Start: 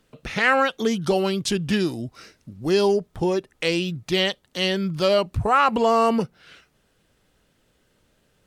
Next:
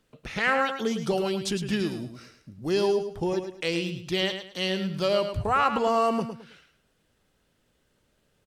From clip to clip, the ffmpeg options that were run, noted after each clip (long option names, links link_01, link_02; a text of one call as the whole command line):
ffmpeg -i in.wav -af "aecho=1:1:107|214|321:0.376|0.105|0.0295,volume=-5.5dB" out.wav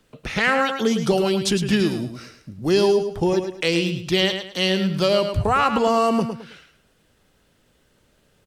ffmpeg -i in.wav -filter_complex "[0:a]acrossover=split=360|3000[link_01][link_02][link_03];[link_02]acompressor=threshold=-32dB:ratio=1.5[link_04];[link_01][link_04][link_03]amix=inputs=3:normalize=0,volume=8dB" out.wav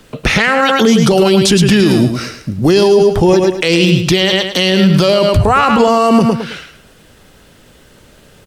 ffmpeg -i in.wav -af "alimiter=level_in=18.5dB:limit=-1dB:release=50:level=0:latency=1,volume=-1dB" out.wav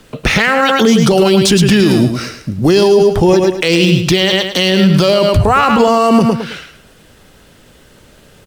ffmpeg -i in.wav -ar 44100 -c:a adpcm_ima_wav out.wav